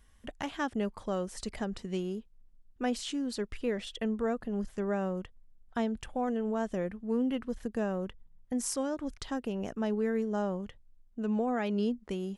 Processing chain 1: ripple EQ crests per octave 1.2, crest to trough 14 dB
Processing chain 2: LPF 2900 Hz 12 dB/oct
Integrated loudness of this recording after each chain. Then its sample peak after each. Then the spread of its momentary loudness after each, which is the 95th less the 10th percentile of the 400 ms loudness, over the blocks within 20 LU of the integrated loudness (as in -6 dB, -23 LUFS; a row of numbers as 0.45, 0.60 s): -33.5, -34.0 LUFS; -16.0, -19.0 dBFS; 7, 9 LU